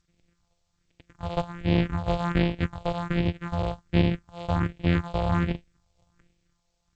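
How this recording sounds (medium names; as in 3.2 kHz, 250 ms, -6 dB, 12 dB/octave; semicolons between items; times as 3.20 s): a buzz of ramps at a fixed pitch in blocks of 256 samples; phasing stages 4, 1.3 Hz, lowest notch 260–1200 Hz; G.722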